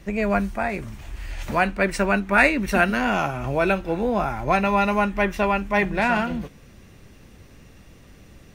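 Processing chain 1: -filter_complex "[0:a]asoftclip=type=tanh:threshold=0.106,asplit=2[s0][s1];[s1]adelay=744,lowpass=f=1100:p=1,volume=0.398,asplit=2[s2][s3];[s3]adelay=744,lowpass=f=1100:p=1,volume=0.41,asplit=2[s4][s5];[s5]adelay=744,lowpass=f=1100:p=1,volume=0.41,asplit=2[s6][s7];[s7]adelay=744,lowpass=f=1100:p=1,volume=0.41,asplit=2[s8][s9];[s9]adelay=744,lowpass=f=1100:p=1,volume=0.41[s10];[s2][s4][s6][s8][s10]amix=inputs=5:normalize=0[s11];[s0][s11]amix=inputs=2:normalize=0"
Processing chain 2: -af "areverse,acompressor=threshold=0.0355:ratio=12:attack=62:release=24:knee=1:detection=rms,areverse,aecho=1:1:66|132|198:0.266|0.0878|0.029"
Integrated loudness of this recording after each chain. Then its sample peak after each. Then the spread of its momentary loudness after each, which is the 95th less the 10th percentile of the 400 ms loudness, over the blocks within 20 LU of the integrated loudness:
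-26.0 LUFS, -27.5 LUFS; -16.5 dBFS, -13.0 dBFS; 15 LU, 6 LU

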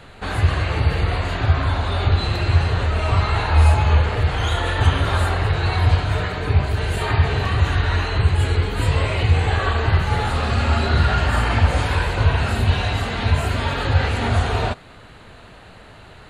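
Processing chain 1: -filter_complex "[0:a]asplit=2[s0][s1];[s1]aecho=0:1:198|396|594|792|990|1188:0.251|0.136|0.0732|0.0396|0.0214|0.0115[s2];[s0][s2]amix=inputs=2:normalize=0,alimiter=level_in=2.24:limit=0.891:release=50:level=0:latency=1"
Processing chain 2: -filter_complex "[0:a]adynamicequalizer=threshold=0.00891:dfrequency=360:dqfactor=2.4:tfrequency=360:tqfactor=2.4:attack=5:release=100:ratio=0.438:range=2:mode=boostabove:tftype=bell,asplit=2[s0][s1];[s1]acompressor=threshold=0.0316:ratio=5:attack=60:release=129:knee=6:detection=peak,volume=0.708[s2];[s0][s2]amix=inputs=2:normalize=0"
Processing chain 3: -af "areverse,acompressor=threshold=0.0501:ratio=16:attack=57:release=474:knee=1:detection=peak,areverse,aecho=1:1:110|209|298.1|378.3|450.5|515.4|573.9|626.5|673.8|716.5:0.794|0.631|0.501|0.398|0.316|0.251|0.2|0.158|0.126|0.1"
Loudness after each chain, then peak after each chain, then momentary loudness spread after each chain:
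-13.0 LUFS, -18.0 LUFS, -26.0 LUFS; -1.0 dBFS, -2.5 dBFS, -11.5 dBFS; 3 LU, 3 LU, 2 LU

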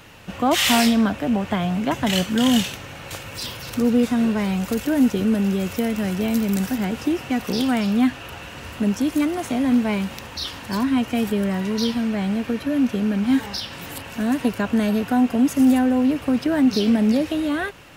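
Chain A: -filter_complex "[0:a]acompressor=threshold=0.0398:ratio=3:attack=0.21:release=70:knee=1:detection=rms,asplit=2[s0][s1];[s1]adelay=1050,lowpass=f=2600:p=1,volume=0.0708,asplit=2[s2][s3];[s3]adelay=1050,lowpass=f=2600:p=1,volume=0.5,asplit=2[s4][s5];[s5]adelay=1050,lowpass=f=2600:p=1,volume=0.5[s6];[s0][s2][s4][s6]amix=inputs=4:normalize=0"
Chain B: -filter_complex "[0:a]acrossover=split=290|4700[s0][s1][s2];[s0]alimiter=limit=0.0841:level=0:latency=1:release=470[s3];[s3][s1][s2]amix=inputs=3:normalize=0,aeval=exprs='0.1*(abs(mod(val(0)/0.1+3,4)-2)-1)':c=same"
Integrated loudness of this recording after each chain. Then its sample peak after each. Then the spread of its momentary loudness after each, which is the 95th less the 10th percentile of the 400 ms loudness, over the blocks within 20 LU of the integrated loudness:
-30.5 LUFS, -26.5 LUFS; -20.0 dBFS, -20.0 dBFS; 5 LU, 6 LU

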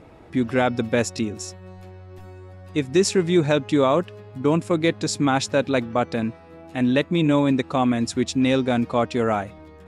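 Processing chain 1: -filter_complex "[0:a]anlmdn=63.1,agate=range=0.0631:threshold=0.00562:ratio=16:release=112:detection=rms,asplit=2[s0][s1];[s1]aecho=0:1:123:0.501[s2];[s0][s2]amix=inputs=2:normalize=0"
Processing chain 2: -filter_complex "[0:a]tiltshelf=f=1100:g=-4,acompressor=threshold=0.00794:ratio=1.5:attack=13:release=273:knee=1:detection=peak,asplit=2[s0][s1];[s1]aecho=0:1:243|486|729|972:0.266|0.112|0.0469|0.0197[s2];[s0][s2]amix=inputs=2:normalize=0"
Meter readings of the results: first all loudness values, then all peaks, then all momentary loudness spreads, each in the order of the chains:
-21.0 LUFS, -31.5 LUFS; -5.5 dBFS, -16.0 dBFS; 10 LU, 13 LU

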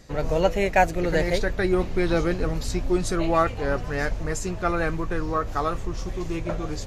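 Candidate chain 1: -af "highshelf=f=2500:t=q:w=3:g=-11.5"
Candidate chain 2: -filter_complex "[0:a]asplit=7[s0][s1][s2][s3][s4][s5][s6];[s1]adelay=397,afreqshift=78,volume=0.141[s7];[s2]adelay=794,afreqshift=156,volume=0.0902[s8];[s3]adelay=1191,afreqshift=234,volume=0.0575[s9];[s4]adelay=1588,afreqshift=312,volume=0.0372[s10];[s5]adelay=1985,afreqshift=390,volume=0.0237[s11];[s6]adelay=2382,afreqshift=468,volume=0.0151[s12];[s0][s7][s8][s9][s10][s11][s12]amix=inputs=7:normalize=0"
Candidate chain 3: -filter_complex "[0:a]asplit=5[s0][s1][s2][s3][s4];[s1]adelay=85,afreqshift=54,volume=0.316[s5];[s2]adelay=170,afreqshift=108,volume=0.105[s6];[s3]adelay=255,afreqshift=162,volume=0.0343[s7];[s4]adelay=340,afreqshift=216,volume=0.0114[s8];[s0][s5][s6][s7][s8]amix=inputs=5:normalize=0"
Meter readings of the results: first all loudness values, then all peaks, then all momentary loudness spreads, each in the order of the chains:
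-24.0 LUFS, -25.0 LUFS, -24.5 LUFS; -3.0 dBFS, -5.5 dBFS, -5.5 dBFS; 10 LU, 8 LU, 8 LU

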